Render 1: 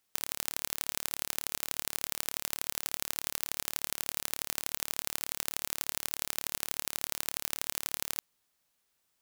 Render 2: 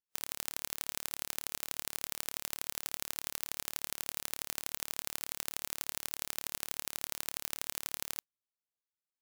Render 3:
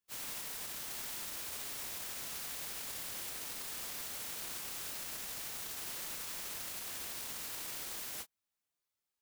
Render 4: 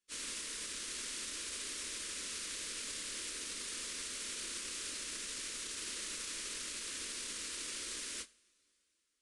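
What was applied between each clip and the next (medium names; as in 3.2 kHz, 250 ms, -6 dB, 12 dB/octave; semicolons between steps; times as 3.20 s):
spectral contrast expander 1.5:1; trim -3.5 dB
phase randomisation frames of 100 ms; peak limiter -37.5 dBFS, peak gain reduction 10 dB; trim +4.5 dB
static phaser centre 320 Hz, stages 4; two-slope reverb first 0.45 s, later 3.7 s, from -20 dB, DRR 16 dB; resampled via 22.05 kHz; trim +4 dB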